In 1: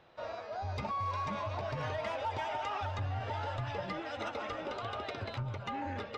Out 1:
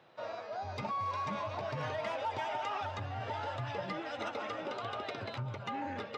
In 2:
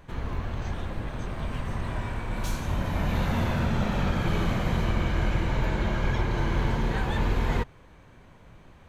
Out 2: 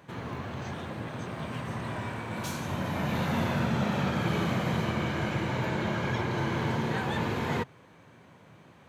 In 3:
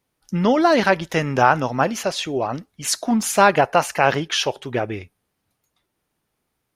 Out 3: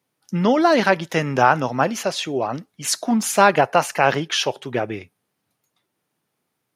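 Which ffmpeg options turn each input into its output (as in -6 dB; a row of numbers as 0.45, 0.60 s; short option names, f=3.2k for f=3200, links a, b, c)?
-af "highpass=f=110:w=0.5412,highpass=f=110:w=1.3066"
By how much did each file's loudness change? -0.5, -2.0, 0.0 LU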